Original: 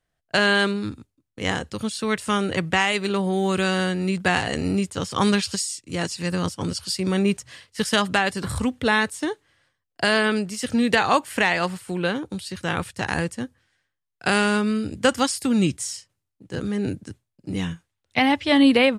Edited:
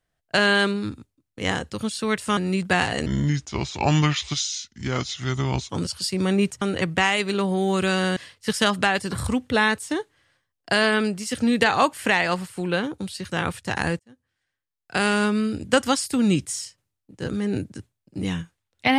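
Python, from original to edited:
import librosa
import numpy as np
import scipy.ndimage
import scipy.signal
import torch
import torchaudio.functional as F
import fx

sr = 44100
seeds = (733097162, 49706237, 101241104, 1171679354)

y = fx.edit(x, sr, fx.move(start_s=2.37, length_s=1.55, to_s=7.48),
    fx.speed_span(start_s=4.61, length_s=1.95, speed=0.74),
    fx.fade_in_span(start_s=13.31, length_s=1.26), tone=tone)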